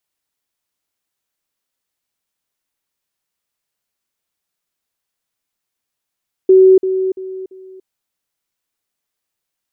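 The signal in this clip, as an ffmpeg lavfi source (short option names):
-f lavfi -i "aevalsrc='pow(10,(-4-10*floor(t/0.34))/20)*sin(2*PI*377*t)*clip(min(mod(t,0.34),0.29-mod(t,0.34))/0.005,0,1)':d=1.36:s=44100"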